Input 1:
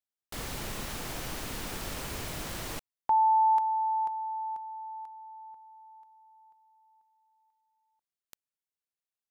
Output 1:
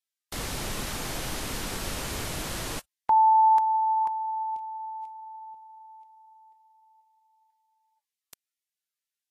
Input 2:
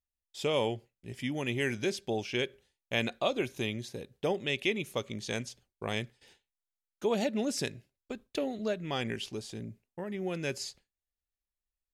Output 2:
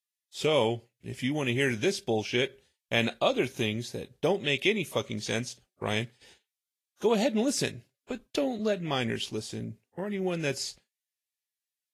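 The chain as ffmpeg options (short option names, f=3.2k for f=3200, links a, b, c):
-af "volume=4.5dB" -ar 48000 -c:a libvorbis -b:a 32k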